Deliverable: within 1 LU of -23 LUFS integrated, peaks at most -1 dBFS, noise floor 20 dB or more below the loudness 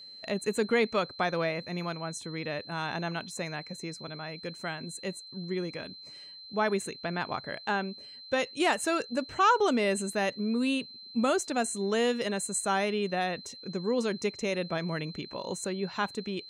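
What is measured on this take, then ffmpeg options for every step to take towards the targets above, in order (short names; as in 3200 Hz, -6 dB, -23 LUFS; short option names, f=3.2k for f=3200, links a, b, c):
steady tone 4100 Hz; tone level -45 dBFS; loudness -31.0 LUFS; peak -13.5 dBFS; loudness target -23.0 LUFS
-> -af "bandreject=f=4.1k:w=30"
-af "volume=8dB"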